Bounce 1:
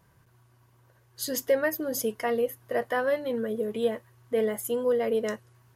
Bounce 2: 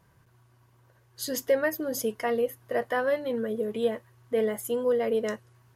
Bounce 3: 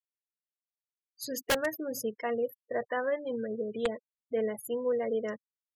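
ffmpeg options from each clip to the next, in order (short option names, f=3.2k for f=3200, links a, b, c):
-af "highshelf=f=9.9k:g=-4"
-af "aeval=exprs='(mod(6.31*val(0)+1,2)-1)/6.31':c=same,afftfilt=real='re*gte(hypot(re,im),0.02)':imag='im*gte(hypot(re,im),0.02)':win_size=1024:overlap=0.75,volume=-4.5dB"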